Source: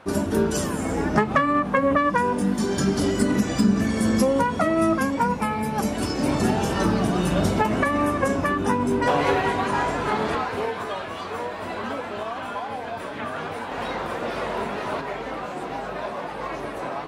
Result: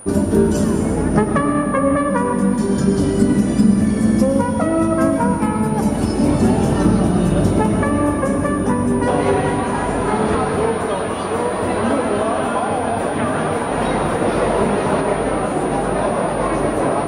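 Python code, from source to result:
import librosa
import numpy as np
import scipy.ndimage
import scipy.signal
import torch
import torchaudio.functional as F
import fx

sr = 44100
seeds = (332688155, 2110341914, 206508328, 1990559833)

y = fx.rider(x, sr, range_db=10, speed_s=2.0)
y = y + 10.0 ** (-34.0 / 20.0) * np.sin(2.0 * np.pi * 9500.0 * np.arange(len(y)) / sr)
y = fx.tilt_shelf(y, sr, db=5.5, hz=670.0)
y = fx.rev_freeverb(y, sr, rt60_s=2.6, hf_ratio=0.75, predelay_ms=70, drr_db=5.0)
y = y * librosa.db_to_amplitude(3.5)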